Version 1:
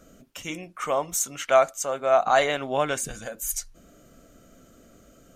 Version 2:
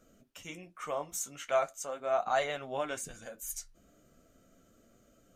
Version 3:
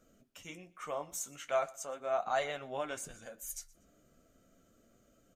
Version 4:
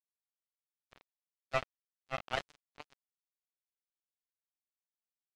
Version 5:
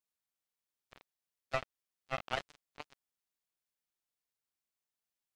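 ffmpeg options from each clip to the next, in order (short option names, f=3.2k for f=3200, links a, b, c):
-af "flanger=delay=8.2:depth=6.8:regen=-45:speed=0.4:shape=triangular,volume=-6.5dB"
-af "aecho=1:1:120|240:0.0708|0.0219,volume=-3dB"
-af "bass=f=250:g=12,treble=f=4k:g=-13,acrusher=bits=3:mix=0:aa=0.5"
-af "acompressor=threshold=-33dB:ratio=4,volume=3dB"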